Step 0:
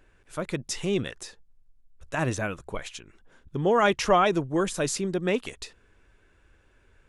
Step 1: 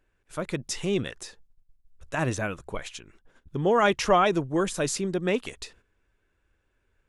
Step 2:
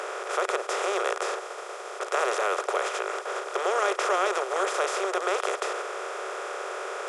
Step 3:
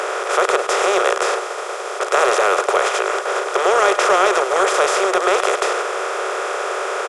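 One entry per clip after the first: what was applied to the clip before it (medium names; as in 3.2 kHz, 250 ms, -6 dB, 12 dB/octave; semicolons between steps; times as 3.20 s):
gate -54 dBFS, range -11 dB
spectral levelling over time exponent 0.2; rippled Chebyshev high-pass 370 Hz, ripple 3 dB; trim -8 dB
in parallel at -9 dB: saturation -24 dBFS, distortion -12 dB; on the sum: delay 102 ms -13 dB; trim +8.5 dB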